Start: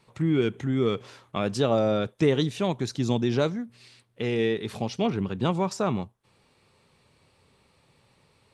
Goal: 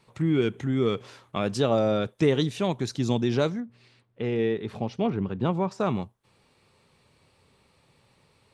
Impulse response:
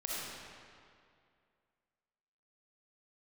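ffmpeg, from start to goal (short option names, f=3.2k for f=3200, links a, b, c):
-filter_complex "[0:a]asettb=1/sr,asplit=3[a][b][c];[a]atrim=end=3.604[d];[b]atrim=start=3.6:end=5.8,asetpts=PTS-STARTPTS,afade=t=in:d=0.004:c=qsin,afade=t=out:st=2.196:d=0.004:c=qsin,lowpass=f=1.6k:p=1[e];[c]atrim=start=5.796[f];[d][e]acrossfade=d=0.004:c1=hsin:c2=qsin[g];[g][f]acrossfade=d=0.004:c1=qsin:c2=hsin"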